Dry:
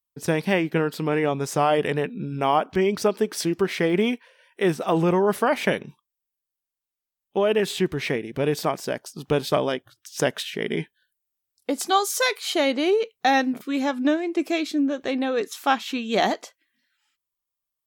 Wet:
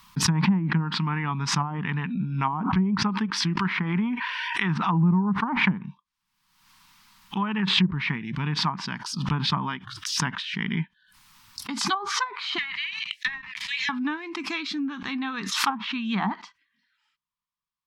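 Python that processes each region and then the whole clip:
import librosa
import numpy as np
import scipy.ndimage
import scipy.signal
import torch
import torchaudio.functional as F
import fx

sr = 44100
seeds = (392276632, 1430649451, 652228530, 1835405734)

y = fx.chain(x, sr, fx.highpass(hz=63.0, slope=12),
    fx.tilt_eq(slope=2.0),
    fx.env_flatten(amount_pct=70), at=(3.57, 4.78))
y = fx.chain(y, sr, fx.cheby1_highpass(hz=1700.0, order=8),
    fx.leveller(passes=2), at=(12.58, 13.89))
y = fx.curve_eq(y, sr, hz=(100.0, 190.0, 570.0, 950.0, 1500.0, 5000.0, 7200.0, 12000.0), db=(0, 9, -29, 9, 3, 1, -8, -11))
y = fx.env_lowpass_down(y, sr, base_hz=540.0, full_db=-15.5)
y = fx.pre_swell(y, sr, db_per_s=49.0)
y = y * librosa.db_to_amplitude(-2.5)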